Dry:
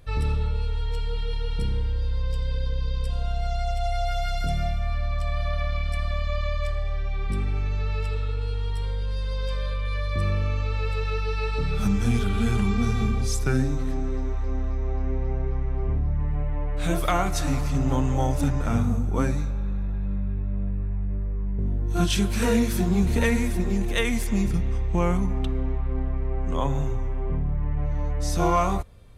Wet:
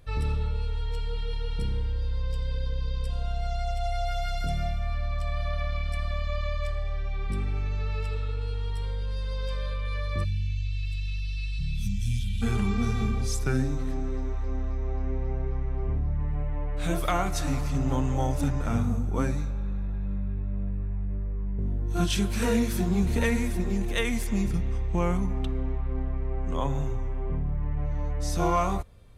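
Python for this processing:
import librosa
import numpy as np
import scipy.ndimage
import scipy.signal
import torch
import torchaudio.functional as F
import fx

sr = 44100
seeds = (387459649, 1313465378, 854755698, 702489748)

y = fx.ellip_bandstop(x, sr, low_hz=160.0, high_hz=2800.0, order=3, stop_db=70, at=(10.23, 12.41), fade=0.02)
y = F.gain(torch.from_numpy(y), -3.0).numpy()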